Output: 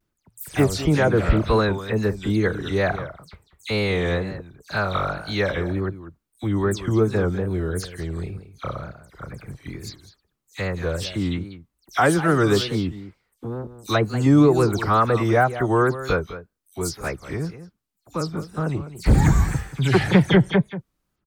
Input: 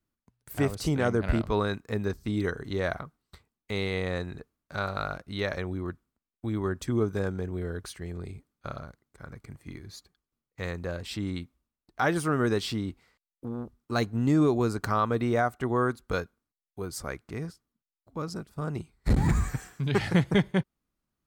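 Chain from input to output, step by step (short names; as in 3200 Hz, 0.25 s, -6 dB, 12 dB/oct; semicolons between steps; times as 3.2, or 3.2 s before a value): spectral delay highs early, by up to 0.107 s; echo 0.195 s -13.5 dB; wow and flutter 110 cents; gain +8 dB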